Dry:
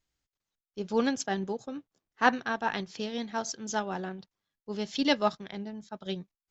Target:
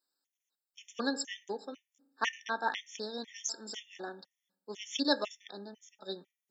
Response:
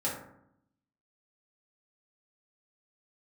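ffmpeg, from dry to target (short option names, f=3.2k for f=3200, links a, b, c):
-filter_complex "[0:a]highpass=f=260:w=0.5412,highpass=f=260:w=1.3066,highshelf=f=3.2k:g=10,asplit=2[a][b];[1:a]atrim=start_sample=2205,lowshelf=f=220:g=-3[c];[b][c]afir=irnorm=-1:irlink=0,volume=-19.5dB[d];[a][d]amix=inputs=2:normalize=0,afftfilt=real='re*gt(sin(2*PI*2*pts/sr)*(1-2*mod(floor(b*sr/1024/1800),2)),0)':imag='im*gt(sin(2*PI*2*pts/sr)*(1-2*mod(floor(b*sr/1024/1800),2)),0)':win_size=1024:overlap=0.75,volume=-4dB"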